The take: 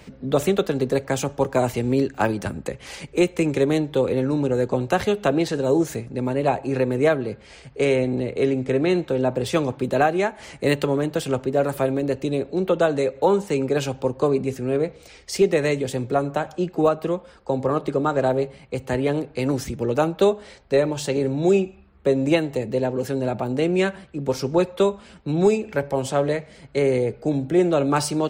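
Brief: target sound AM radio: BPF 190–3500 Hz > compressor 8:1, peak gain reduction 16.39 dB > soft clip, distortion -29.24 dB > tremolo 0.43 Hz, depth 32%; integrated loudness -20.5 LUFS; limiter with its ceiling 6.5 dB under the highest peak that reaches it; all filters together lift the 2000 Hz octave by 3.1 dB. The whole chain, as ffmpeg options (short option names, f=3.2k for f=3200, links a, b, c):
-af "equalizer=f=2k:t=o:g=4.5,alimiter=limit=-12dB:level=0:latency=1,highpass=190,lowpass=3.5k,acompressor=threshold=-33dB:ratio=8,asoftclip=threshold=-21.5dB,tremolo=f=0.43:d=0.32,volume=18.5dB"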